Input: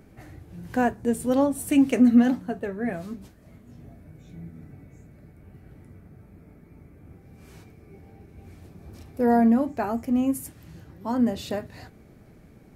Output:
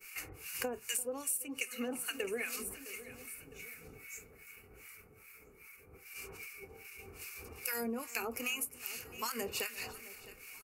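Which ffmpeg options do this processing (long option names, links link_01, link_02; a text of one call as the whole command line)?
ffmpeg -i in.wav -filter_complex "[0:a]equalizer=frequency=150:width=0.36:gain=-15,atempo=1.2,acrossover=split=380|3000[link_01][link_02][link_03];[link_02]acompressor=threshold=-34dB:ratio=6[link_04];[link_01][link_04][link_03]amix=inputs=3:normalize=0,crystalizer=i=8:c=0,agate=range=-33dB:threshold=-50dB:ratio=3:detection=peak,superequalizer=7b=2.82:8b=0.631:10b=1.78:12b=3.16:13b=0.447,acrossover=split=1100[link_05][link_06];[link_05]aeval=exprs='val(0)*(1-1/2+1/2*cos(2*PI*2.5*n/s))':channel_layout=same[link_07];[link_06]aeval=exprs='val(0)*(1-1/2-1/2*cos(2*PI*2.5*n/s))':channel_layout=same[link_08];[link_07][link_08]amix=inputs=2:normalize=0,asplit=2[link_09][link_10];[link_10]aecho=0:1:659|1318|1977:0.0708|0.0333|0.0156[link_11];[link_09][link_11]amix=inputs=2:normalize=0,acompressor=threshold=-37dB:ratio=16,asplit=2[link_12][link_13];[link_13]aecho=0:1:342:0.1[link_14];[link_12][link_14]amix=inputs=2:normalize=0,volume=3.5dB" out.wav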